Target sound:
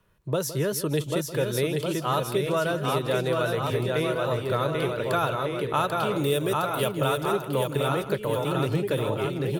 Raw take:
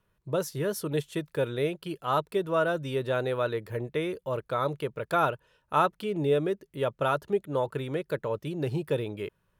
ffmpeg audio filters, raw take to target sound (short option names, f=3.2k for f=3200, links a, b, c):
-filter_complex "[0:a]asettb=1/sr,asplit=3[a][b][c];[a]atrim=end=6.144[d];[b]atrim=start=6.14:end=6.99,asetpts=PTS-STARTPTS,afade=t=in:d=0.004:c=qsin,afade=t=out:st=0.846:d=0.004:c=qsin,aemphasis=mode=production:type=75fm[e];[c]atrim=start=6.986[f];[d][e]acrossfade=d=0.004:c1=hsin:c2=qsin[g];[g][f]acrossfade=d=0.004:c1=qsin:c2=hsin,asplit=2[h][i];[i]aecho=0:1:790|1501|2141|2717|3235:0.631|0.398|0.251|0.158|0.1[j];[h][j]amix=inputs=2:normalize=0,acrossover=split=130|3000[k][l][m];[l]acompressor=threshold=-33dB:ratio=2.5[n];[k][n][m]amix=inputs=3:normalize=0,asplit=2[o][p];[p]adelay=163.3,volume=-14dB,highshelf=f=4k:g=-3.67[q];[o][q]amix=inputs=2:normalize=0,volume=7dB"